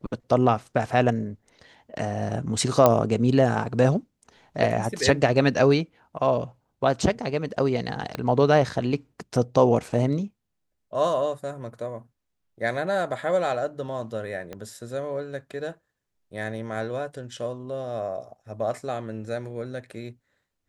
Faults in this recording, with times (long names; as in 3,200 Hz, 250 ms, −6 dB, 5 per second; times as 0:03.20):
0:02.86: click −4 dBFS
0:08.15: click −16 dBFS
0:14.53: click −22 dBFS